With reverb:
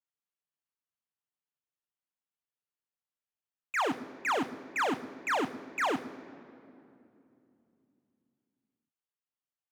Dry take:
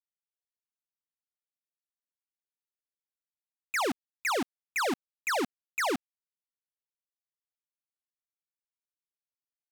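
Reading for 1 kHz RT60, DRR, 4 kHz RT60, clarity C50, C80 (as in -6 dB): 2.5 s, 9.0 dB, 1.7 s, 15.5 dB, 16.0 dB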